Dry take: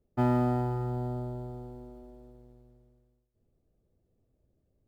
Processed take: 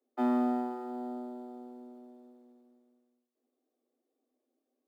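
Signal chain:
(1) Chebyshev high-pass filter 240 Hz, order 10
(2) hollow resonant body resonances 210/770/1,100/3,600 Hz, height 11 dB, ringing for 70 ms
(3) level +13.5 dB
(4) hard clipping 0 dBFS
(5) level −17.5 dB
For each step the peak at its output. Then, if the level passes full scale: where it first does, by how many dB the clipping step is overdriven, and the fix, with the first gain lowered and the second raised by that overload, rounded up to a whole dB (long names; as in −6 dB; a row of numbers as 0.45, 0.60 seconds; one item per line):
−18.5, −16.5, −3.0, −3.0, −20.5 dBFS
no step passes full scale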